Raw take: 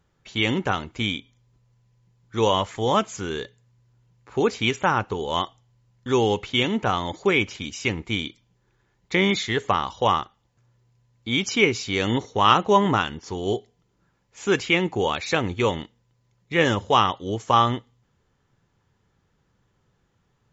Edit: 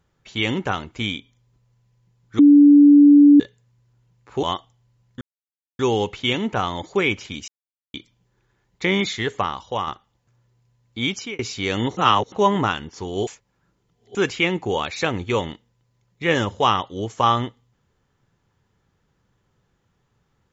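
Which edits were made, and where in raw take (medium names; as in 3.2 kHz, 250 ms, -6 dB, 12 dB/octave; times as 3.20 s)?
2.39–3.40 s: bleep 289 Hz -6.5 dBFS
4.43–5.31 s: delete
6.09 s: insert silence 0.58 s
7.78–8.24 s: mute
9.51–10.17 s: fade out, to -6.5 dB
11.36–11.69 s: fade out
12.27–12.62 s: reverse
13.57–14.45 s: reverse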